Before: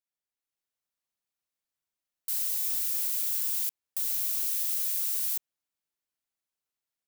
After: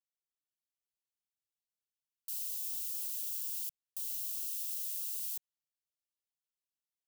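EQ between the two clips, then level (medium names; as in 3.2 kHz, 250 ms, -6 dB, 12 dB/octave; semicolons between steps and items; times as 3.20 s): Chebyshev band-stop 170–2700 Hz, order 4; -8.0 dB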